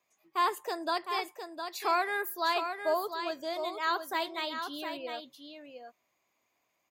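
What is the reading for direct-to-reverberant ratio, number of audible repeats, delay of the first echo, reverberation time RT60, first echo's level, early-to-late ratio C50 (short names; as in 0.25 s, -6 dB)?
none, 1, 0.709 s, none, -7.5 dB, none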